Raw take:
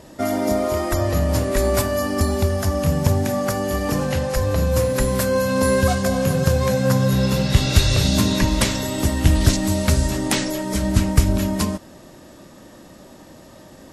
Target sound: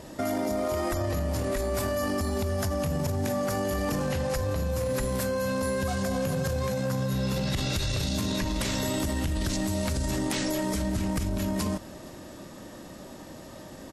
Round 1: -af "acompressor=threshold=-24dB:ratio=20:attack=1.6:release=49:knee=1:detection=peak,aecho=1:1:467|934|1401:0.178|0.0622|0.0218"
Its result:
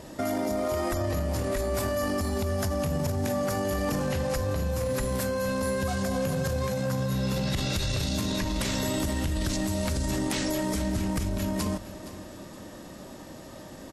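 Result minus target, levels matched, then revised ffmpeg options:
echo-to-direct +9 dB
-af "acompressor=threshold=-24dB:ratio=20:attack=1.6:release=49:knee=1:detection=peak,aecho=1:1:467|934:0.0631|0.0221"

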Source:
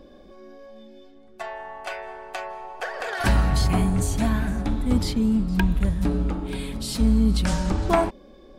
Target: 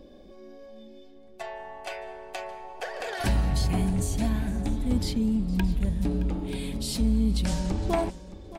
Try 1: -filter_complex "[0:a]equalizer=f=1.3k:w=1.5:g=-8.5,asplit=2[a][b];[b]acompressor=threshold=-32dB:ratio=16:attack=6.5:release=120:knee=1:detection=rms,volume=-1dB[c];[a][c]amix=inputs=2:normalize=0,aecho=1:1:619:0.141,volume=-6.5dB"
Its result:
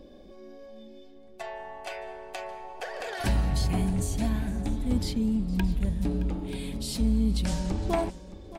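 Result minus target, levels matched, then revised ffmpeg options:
compressor: peak gain reduction +6 dB
-filter_complex "[0:a]equalizer=f=1.3k:w=1.5:g=-8.5,asplit=2[a][b];[b]acompressor=threshold=-25.5dB:ratio=16:attack=6.5:release=120:knee=1:detection=rms,volume=-1dB[c];[a][c]amix=inputs=2:normalize=0,aecho=1:1:619:0.141,volume=-6.5dB"

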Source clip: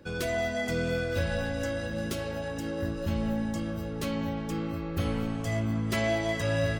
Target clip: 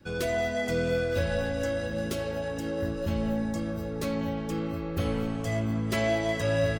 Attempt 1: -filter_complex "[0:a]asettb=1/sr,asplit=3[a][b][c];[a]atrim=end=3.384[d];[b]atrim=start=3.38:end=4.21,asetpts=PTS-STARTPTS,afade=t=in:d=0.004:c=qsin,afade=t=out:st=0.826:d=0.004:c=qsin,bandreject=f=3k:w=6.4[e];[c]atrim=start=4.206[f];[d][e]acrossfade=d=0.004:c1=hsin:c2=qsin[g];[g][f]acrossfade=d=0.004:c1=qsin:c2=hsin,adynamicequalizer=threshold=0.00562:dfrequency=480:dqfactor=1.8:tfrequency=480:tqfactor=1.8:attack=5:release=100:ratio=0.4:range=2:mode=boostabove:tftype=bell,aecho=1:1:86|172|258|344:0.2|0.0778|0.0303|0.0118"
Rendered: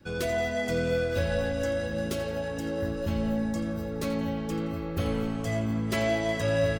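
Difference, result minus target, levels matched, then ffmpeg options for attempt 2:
echo-to-direct +11.5 dB
-filter_complex "[0:a]asettb=1/sr,asplit=3[a][b][c];[a]atrim=end=3.384[d];[b]atrim=start=3.38:end=4.21,asetpts=PTS-STARTPTS,afade=t=in:d=0.004:c=qsin,afade=t=out:st=0.826:d=0.004:c=qsin,bandreject=f=3k:w=6.4[e];[c]atrim=start=4.206[f];[d][e]acrossfade=d=0.004:c1=hsin:c2=qsin[g];[g][f]acrossfade=d=0.004:c1=qsin:c2=hsin,adynamicequalizer=threshold=0.00562:dfrequency=480:dqfactor=1.8:tfrequency=480:tqfactor=1.8:attack=5:release=100:ratio=0.4:range=2:mode=boostabove:tftype=bell,aecho=1:1:86|172:0.0531|0.0207"

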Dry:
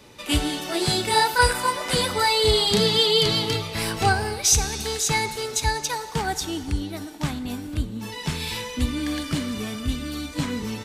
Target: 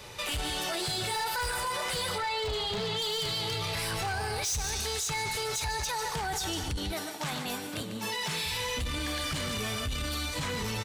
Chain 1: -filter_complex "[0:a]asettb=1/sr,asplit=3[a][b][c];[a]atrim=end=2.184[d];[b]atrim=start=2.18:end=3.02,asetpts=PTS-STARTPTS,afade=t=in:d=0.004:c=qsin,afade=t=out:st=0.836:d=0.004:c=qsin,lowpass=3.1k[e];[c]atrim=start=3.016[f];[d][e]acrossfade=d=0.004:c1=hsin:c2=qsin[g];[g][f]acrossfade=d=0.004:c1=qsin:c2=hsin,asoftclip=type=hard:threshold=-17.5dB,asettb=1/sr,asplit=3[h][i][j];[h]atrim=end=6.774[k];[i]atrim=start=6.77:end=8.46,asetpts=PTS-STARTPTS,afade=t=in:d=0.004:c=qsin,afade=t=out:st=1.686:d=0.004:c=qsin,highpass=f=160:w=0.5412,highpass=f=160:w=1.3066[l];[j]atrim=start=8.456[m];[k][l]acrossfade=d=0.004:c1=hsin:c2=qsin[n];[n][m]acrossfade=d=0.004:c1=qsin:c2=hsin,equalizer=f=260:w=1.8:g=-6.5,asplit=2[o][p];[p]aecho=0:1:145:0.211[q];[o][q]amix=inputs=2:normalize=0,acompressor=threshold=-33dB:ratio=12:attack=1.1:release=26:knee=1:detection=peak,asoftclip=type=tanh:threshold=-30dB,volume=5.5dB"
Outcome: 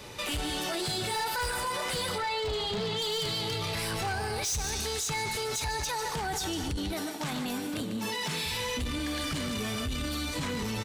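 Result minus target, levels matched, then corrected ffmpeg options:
250 Hz band +4.5 dB
-filter_complex "[0:a]asettb=1/sr,asplit=3[a][b][c];[a]atrim=end=2.184[d];[b]atrim=start=2.18:end=3.02,asetpts=PTS-STARTPTS,afade=t=in:d=0.004:c=qsin,afade=t=out:st=0.836:d=0.004:c=qsin,lowpass=3.1k[e];[c]atrim=start=3.016[f];[d][e]acrossfade=d=0.004:c1=hsin:c2=qsin[g];[g][f]acrossfade=d=0.004:c1=qsin:c2=hsin,asoftclip=type=hard:threshold=-17.5dB,asettb=1/sr,asplit=3[h][i][j];[h]atrim=end=6.774[k];[i]atrim=start=6.77:end=8.46,asetpts=PTS-STARTPTS,afade=t=in:d=0.004:c=qsin,afade=t=out:st=1.686:d=0.004:c=qsin,highpass=f=160:w=0.5412,highpass=f=160:w=1.3066[l];[j]atrim=start=8.456[m];[k][l]acrossfade=d=0.004:c1=hsin:c2=qsin[n];[n][m]acrossfade=d=0.004:c1=qsin:c2=hsin,equalizer=f=260:w=1.8:g=-16,asplit=2[o][p];[p]aecho=0:1:145:0.211[q];[o][q]amix=inputs=2:normalize=0,acompressor=threshold=-33dB:ratio=12:attack=1.1:release=26:knee=1:detection=peak,asoftclip=type=tanh:threshold=-30dB,volume=5.5dB"

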